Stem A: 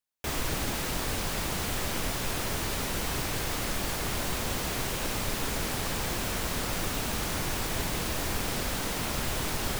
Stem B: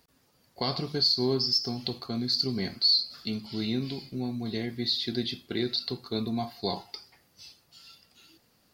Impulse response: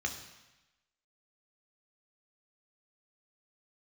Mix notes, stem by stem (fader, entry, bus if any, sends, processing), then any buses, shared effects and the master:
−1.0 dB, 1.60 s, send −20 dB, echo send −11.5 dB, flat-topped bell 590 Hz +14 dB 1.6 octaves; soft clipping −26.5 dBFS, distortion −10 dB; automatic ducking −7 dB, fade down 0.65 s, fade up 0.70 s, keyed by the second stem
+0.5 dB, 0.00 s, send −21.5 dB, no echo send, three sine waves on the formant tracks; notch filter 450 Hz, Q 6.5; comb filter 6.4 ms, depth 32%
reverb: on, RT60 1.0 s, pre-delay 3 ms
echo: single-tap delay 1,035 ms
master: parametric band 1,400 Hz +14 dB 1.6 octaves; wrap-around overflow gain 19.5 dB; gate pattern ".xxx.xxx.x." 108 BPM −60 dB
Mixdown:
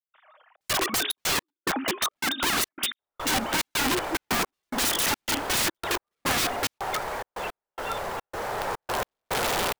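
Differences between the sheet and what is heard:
stem A: entry 1.60 s → 2.75 s
stem B +0.5 dB → +10.5 dB

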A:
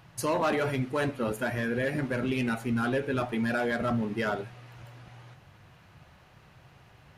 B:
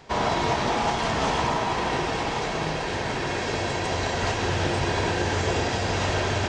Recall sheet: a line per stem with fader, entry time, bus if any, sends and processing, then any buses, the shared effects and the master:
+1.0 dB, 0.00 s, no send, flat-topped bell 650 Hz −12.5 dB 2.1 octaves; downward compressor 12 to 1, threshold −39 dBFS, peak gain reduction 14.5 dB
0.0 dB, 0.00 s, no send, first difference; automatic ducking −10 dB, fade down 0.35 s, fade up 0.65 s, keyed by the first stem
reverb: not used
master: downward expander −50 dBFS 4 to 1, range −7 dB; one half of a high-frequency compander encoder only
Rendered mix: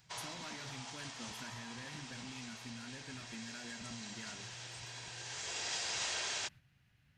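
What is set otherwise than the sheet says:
stem A +1.0 dB → −7.0 dB
master: missing one half of a high-frequency compander encoder only

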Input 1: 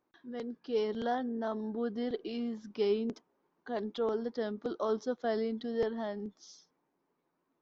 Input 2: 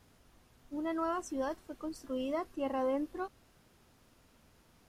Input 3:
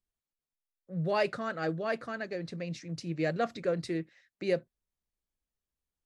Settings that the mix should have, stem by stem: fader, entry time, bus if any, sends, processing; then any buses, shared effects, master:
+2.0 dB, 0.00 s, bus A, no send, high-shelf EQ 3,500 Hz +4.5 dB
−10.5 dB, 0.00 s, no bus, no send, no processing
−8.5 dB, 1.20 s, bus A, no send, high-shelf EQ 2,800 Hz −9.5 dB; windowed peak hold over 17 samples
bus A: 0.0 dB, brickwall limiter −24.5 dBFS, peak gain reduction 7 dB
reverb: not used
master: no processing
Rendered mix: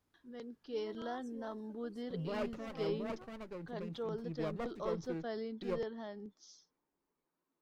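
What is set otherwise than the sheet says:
stem 1 +2.0 dB → −8.0 dB
stem 2 −10.5 dB → −18.5 dB
master: extra parametric band 710 Hz −3 dB 0.25 octaves

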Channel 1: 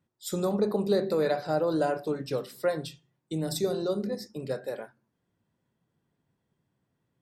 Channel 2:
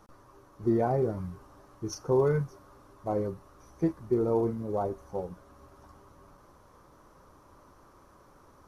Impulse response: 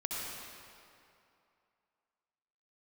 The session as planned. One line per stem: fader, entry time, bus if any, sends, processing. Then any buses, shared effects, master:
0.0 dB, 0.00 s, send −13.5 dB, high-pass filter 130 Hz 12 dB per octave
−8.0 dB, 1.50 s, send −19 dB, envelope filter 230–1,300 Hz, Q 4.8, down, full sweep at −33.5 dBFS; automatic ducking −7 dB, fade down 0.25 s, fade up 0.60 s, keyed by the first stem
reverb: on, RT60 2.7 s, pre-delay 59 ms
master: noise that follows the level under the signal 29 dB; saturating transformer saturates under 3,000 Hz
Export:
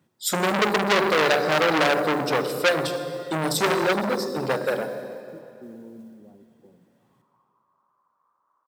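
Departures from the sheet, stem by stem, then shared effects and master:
stem 1 0.0 dB → +9.0 dB
reverb return +6.5 dB

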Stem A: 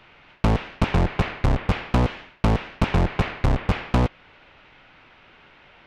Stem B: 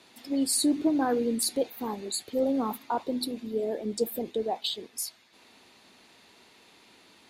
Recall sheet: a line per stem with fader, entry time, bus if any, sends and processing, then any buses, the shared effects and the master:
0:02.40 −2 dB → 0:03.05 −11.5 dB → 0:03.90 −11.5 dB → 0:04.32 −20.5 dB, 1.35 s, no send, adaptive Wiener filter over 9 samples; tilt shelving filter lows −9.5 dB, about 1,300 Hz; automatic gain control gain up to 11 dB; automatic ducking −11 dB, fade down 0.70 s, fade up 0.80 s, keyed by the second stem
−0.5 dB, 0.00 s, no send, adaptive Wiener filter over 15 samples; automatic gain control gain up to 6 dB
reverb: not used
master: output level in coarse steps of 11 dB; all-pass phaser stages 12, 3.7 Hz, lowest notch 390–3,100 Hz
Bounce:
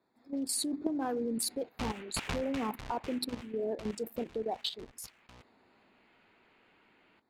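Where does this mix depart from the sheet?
stem B −0.5 dB → −7.0 dB
master: missing all-pass phaser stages 12, 3.7 Hz, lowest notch 390–3,100 Hz

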